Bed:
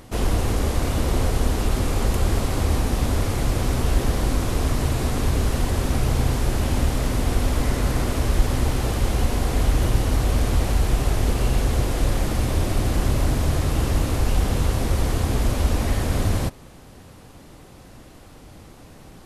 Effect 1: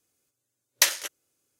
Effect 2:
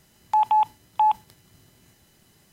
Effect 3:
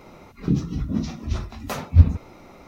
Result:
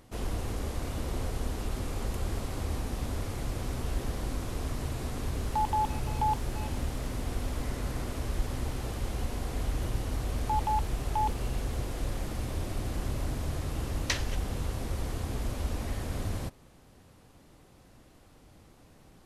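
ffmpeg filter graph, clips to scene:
-filter_complex "[2:a]asplit=2[a][b];[0:a]volume=-12dB[c];[a]asplit=2[d][e];[e]adelay=340,highpass=300,lowpass=3.4k,asoftclip=type=hard:threshold=-22dB,volume=-11dB[f];[d][f]amix=inputs=2:normalize=0[g];[1:a]lowpass=4.8k[h];[g]atrim=end=2.52,asetpts=PTS-STARTPTS,volume=-9.5dB,afade=t=in:d=0.004:c=hsin,afade=t=out:st=2.516:d=0.004:c=hsin,adelay=5220[i];[b]atrim=end=2.52,asetpts=PTS-STARTPTS,volume=-10.5dB,afade=t=in:d=0.004:c=hsin,afade=t=out:st=2.516:d=0.004:c=hsin,adelay=10160[j];[h]atrim=end=1.59,asetpts=PTS-STARTPTS,volume=-7.5dB,afade=t=in:d=0.004:c=hsin,afade=t=out:st=1.586:d=0.004:c=hsin,adelay=13280[k];[c][i][j][k]amix=inputs=4:normalize=0"

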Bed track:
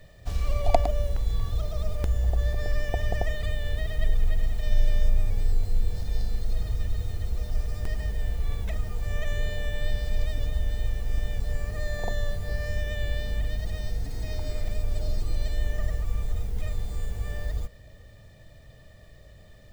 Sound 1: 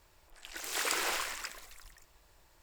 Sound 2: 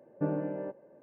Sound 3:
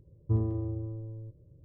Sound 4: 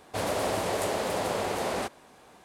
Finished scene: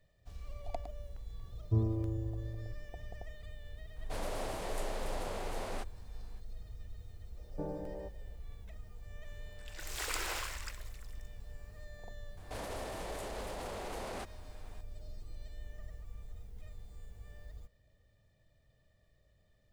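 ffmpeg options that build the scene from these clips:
-filter_complex "[4:a]asplit=2[a][b];[0:a]volume=-19.5dB[c];[2:a]highpass=170,equalizer=f=180:t=q:w=4:g=8,equalizer=f=250:t=q:w=4:g=-8,equalizer=f=440:t=q:w=4:g=5,equalizer=f=780:t=q:w=4:g=7,equalizer=f=1.4k:t=q:w=4:g=-9,lowpass=f=2.1k:w=0.5412,lowpass=f=2.1k:w=1.3066[d];[b]alimiter=level_in=4.5dB:limit=-24dB:level=0:latency=1:release=71,volume=-4.5dB[e];[3:a]atrim=end=1.64,asetpts=PTS-STARTPTS,volume=-2.5dB,afade=t=in:d=0.004:c=hsin,afade=t=out:st=1.636:d=0.004:c=hsin,adelay=1420[f];[a]atrim=end=2.44,asetpts=PTS-STARTPTS,volume=-11.5dB,afade=t=in:d=0.004:c=hsin,afade=t=out:st=2.436:d=0.004:c=hsin,adelay=3960[g];[d]atrim=end=1.02,asetpts=PTS-STARTPTS,volume=-9.5dB,afade=t=in:d=0.004:c=hsin,afade=t=out:st=1.016:d=0.004:c=hsin,adelay=7370[h];[1:a]atrim=end=2.62,asetpts=PTS-STARTPTS,volume=-5.5dB,afade=t=in:d=0.004:c=hsin,afade=t=out:st=2.616:d=0.004:c=hsin,adelay=9230[i];[e]atrim=end=2.44,asetpts=PTS-STARTPTS,volume=-5.5dB,afade=t=in:d=0.004:c=hsin,afade=t=out:st=2.436:d=0.004:c=hsin,adelay=12370[j];[c][f][g][h][i][j]amix=inputs=6:normalize=0"

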